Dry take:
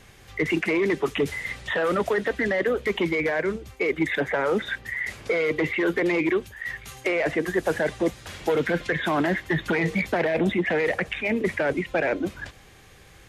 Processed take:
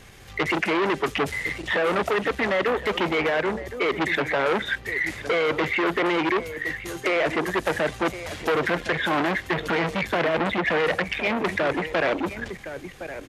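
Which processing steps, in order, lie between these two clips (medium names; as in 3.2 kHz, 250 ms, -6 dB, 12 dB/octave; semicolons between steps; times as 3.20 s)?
on a send: delay 1064 ms -14.5 dB; on the sum: transformer saturation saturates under 1.8 kHz; trim +4 dB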